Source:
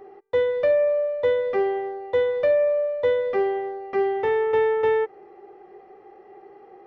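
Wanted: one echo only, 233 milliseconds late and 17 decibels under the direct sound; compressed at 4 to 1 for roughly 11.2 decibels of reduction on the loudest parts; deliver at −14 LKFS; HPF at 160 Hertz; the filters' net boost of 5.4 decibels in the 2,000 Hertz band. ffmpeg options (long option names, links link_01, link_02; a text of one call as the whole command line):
ffmpeg -i in.wav -af "highpass=160,equalizer=frequency=2000:width_type=o:gain=6,acompressor=threshold=-30dB:ratio=4,aecho=1:1:233:0.141,volume=17.5dB" out.wav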